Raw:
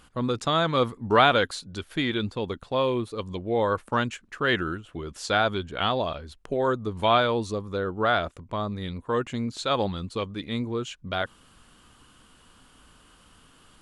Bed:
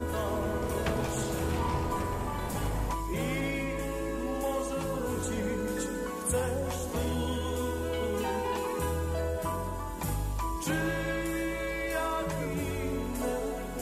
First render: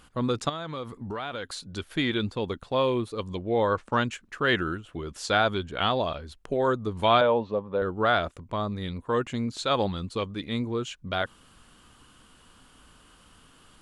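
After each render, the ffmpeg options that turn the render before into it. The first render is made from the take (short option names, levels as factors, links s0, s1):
-filter_complex "[0:a]asettb=1/sr,asplit=3[s0][s1][s2];[s0]atrim=end=0.494[s3];[s1]atrim=start=0.49:end=1.62,asetpts=PTS-STARTPTS,afade=t=in:d=0.004:c=qsin,afade=t=out:st=1.126:d=0.004:c=qsin,acompressor=threshold=0.0251:ratio=5:attack=3.2:release=140:knee=1:detection=peak[s4];[s2]atrim=start=1.616[s5];[s3][s4]acrossfade=d=0.004:c1=hsin:c2=qsin[s6];[s6][s5]acrossfade=d=0.004:c1=qsin:c2=hsin,asettb=1/sr,asplit=3[s7][s8][s9];[s7]atrim=end=3.434[s10];[s8]atrim=start=3.43:end=4.08,asetpts=PTS-STARTPTS,afade=t=in:d=0.004:c=qsin,afade=t=out:st=0.646:d=0.004:c=qsin,lowpass=f=7600:w=0.5412,lowpass=f=7600:w=1.3066[s11];[s9]atrim=start=4.076[s12];[s10][s11]acrossfade=d=0.004:c1=hsin:c2=qsin[s13];[s13][s12]acrossfade=d=0.004:c1=qsin:c2=hsin,asettb=1/sr,asplit=3[s14][s15][s16];[s14]atrim=end=7.214[s17];[s15]atrim=start=7.21:end=7.82,asetpts=PTS-STARTPTS,afade=t=in:d=0.004:c=qsin,afade=t=out:st=0.606:d=0.004:c=qsin,highpass=150,equalizer=f=330:t=q:w=4:g=-6,equalizer=f=560:t=q:w=4:g=8,equalizer=f=880:t=q:w=4:g=6,equalizer=f=1300:t=q:w=4:g=-4,equalizer=f=2100:t=q:w=4:g=-5,lowpass=f=2800:w=0.5412,lowpass=f=2800:w=1.3066[s18];[s16]atrim=start=7.816[s19];[s17][s18]acrossfade=d=0.004:c1=hsin:c2=qsin[s20];[s20][s19]acrossfade=d=0.004:c1=qsin:c2=hsin"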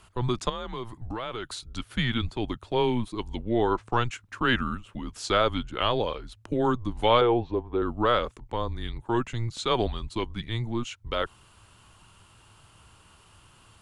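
-af "afreqshift=-120"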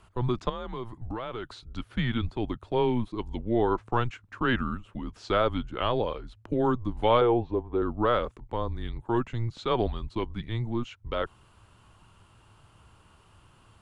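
-filter_complex "[0:a]acrossover=split=5800[s0][s1];[s1]acompressor=threshold=0.001:ratio=4:attack=1:release=60[s2];[s0][s2]amix=inputs=2:normalize=0,highshelf=f=2100:g=-9"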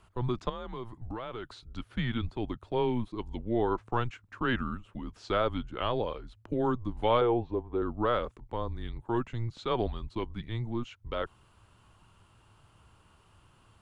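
-af "volume=0.668"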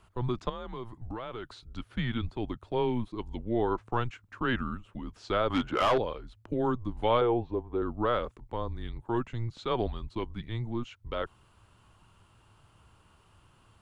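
-filter_complex "[0:a]asettb=1/sr,asplit=3[s0][s1][s2];[s0]atrim=end=5.504[s3];[s1]atrim=start=5.5:end=5.98,asetpts=PTS-STARTPTS,afade=t=in:d=0.004:c=qsin,afade=t=out:st=0.476:d=0.004:c=qsin,asplit=2[s4][s5];[s5]highpass=f=720:p=1,volume=17.8,asoftclip=type=tanh:threshold=0.168[s6];[s4][s6]amix=inputs=2:normalize=0,lowpass=f=1800:p=1,volume=0.501[s7];[s2]atrim=start=5.976[s8];[s3][s7]acrossfade=d=0.004:c1=hsin:c2=qsin[s9];[s9][s8]acrossfade=d=0.004:c1=qsin:c2=hsin"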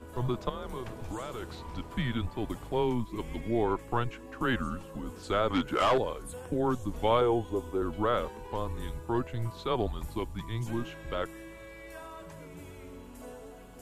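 -filter_complex "[1:a]volume=0.2[s0];[0:a][s0]amix=inputs=2:normalize=0"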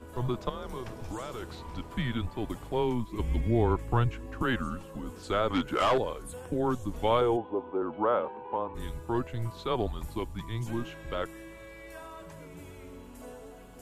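-filter_complex "[0:a]asettb=1/sr,asplit=3[s0][s1][s2];[s0]atrim=end=0.464[s3];[s1]atrim=start=0.46:end=1.42,asetpts=PTS-STARTPTS,afade=t=in:d=0.004:c=qsin,afade=t=out:st=0.956:d=0.004:c=qsin,equalizer=f=5400:t=o:w=0.27:g=6[s4];[s2]atrim=start=1.416[s5];[s3][s4]acrossfade=d=0.004:c1=hsin:c2=qsin[s6];[s6][s5]acrossfade=d=0.004:c1=qsin:c2=hsin,asettb=1/sr,asplit=3[s7][s8][s9];[s7]atrim=end=3.194[s10];[s8]atrim=start=3.19:end=4.43,asetpts=PTS-STARTPTS,afade=t=in:d=0.004:c=qsin,afade=t=out:st=1.236:d=0.004:c=qsin,equalizer=f=68:t=o:w=2.1:g=14[s11];[s9]atrim=start=4.426[s12];[s10][s11]acrossfade=d=0.004:c1=hsin:c2=qsin[s13];[s13][s12]acrossfade=d=0.004:c1=qsin:c2=hsin,asplit=3[s14][s15][s16];[s14]afade=t=out:st=7.36:d=0.02[s17];[s15]highpass=200,equalizer=f=560:t=q:w=4:g=3,equalizer=f=860:t=q:w=4:g=8,equalizer=f=1900:t=q:w=4:g=-8,lowpass=f=2500:w=0.5412,lowpass=f=2500:w=1.3066,afade=t=in:st=7.36:d=0.02,afade=t=out:st=8.74:d=0.02[s18];[s16]afade=t=in:st=8.74:d=0.02[s19];[s17][s18][s19]amix=inputs=3:normalize=0"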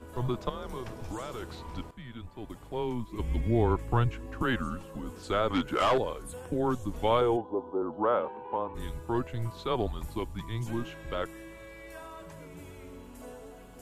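-filter_complex "[0:a]asettb=1/sr,asplit=3[s0][s1][s2];[s0]atrim=end=7.414[s3];[s1]atrim=start=7.41:end=8.04,asetpts=PTS-STARTPTS,afade=t=in:d=0.004:c=qsin,afade=t=out:st=0.626:d=0.004:c=qsin,asuperstop=centerf=2200:order=4:qfactor=0.82[s4];[s2]atrim=start=8.036[s5];[s3][s4]acrossfade=d=0.004:c1=hsin:c2=qsin[s6];[s6][s5]acrossfade=d=0.004:c1=qsin:c2=hsin,asplit=2[s7][s8];[s7]atrim=end=1.91,asetpts=PTS-STARTPTS,afade=t=out:st=1.906:d=0.004:c=hsin:silence=0.141254[s9];[s8]atrim=start=1.91,asetpts=PTS-STARTPTS,afade=t=in:d=1.67:silence=0.141254[s10];[s9][s10]concat=n=2:v=0:a=1"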